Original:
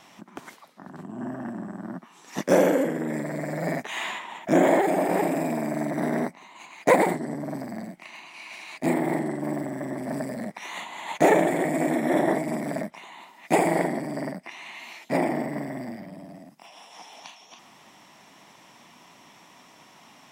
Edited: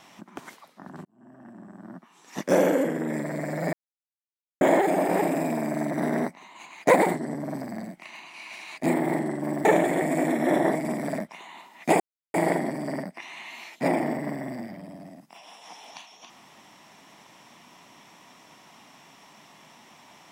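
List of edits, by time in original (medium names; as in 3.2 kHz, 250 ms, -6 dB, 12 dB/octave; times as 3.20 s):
1.05–2.90 s: fade in
3.73–4.61 s: mute
9.65–11.28 s: delete
13.63 s: insert silence 0.34 s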